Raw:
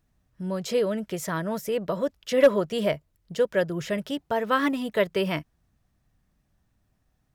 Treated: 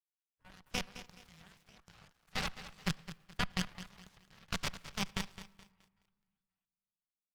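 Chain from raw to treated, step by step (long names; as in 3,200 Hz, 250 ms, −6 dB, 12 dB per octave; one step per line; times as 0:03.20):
mu-law and A-law mismatch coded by A
mains-hum notches 50/100/150/200/250/300/350 Hz
repeating echo 267 ms, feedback 52%, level −17 dB
gate on every frequency bin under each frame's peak −25 dB weak
parametric band 520 Hz −6 dB 1.1 octaves
output level in coarse steps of 14 dB
low-pass filter 2,000 Hz 6 dB per octave
harmonic generator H 4 −6 dB, 7 −18 dB, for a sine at −30 dBFS
low shelf with overshoot 220 Hz +6 dB, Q 3
on a send at −22.5 dB: convolution reverb RT60 1.9 s, pre-delay 3 ms
on the sum: feedback echo at a low word length 212 ms, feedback 35%, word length 12 bits, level −13 dB
level +9.5 dB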